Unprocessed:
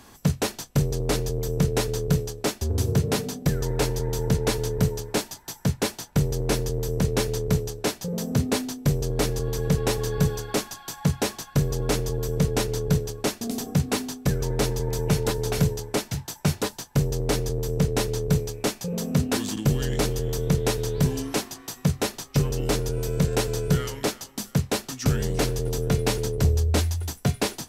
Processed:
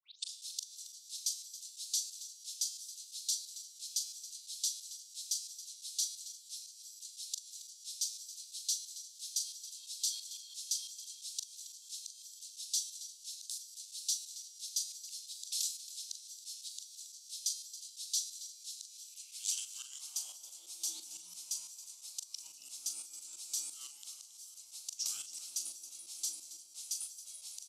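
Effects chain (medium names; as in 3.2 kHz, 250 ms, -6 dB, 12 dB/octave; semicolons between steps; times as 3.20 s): tape start-up on the opening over 0.36 s; differentiator; static phaser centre 500 Hz, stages 6; feedback comb 110 Hz, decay 1.4 s, harmonics all, mix 50%; de-hum 144 Hz, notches 18; compression 8:1, threshold -42 dBFS, peak gain reduction 8.5 dB; slow attack 307 ms; doubling 40 ms -9.5 dB; high-pass sweep 3.8 kHz -> 120 Hz, 18.87–22.11 s; frequency weighting ITU-R 468; frequency shift -99 Hz; on a send: delay 274 ms -14.5 dB; on the sum: trim +5 dB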